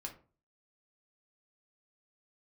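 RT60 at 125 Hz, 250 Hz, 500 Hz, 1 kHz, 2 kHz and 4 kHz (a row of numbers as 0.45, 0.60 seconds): 0.50, 0.45, 0.40, 0.35, 0.30, 0.20 seconds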